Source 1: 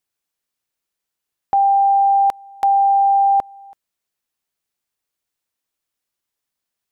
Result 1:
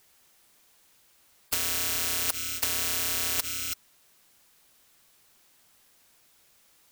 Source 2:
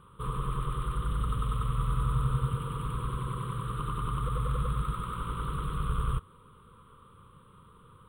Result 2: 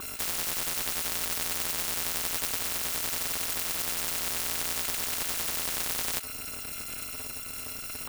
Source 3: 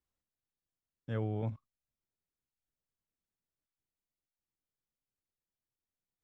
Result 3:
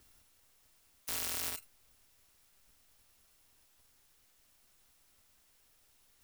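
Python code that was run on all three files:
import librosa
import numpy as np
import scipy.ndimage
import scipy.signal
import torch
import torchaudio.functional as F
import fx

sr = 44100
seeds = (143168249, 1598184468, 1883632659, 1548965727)

y = fx.bit_reversed(x, sr, seeds[0], block=256)
y = fx.spectral_comp(y, sr, ratio=10.0)
y = F.gain(torch.from_numpy(y), 3.5).numpy()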